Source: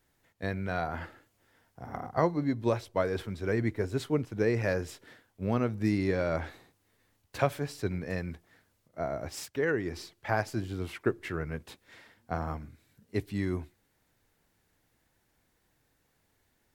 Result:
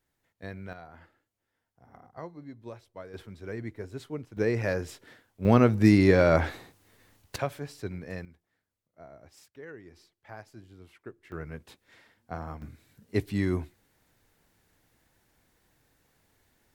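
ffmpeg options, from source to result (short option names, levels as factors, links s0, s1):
-af "asetnsamples=n=441:p=0,asendcmd='0.73 volume volume -15dB;3.14 volume volume -8dB;4.37 volume volume 0.5dB;5.45 volume volume 9dB;7.36 volume volume -4dB;8.25 volume volume -16dB;11.32 volume volume -4dB;12.62 volume volume 4dB',volume=0.447"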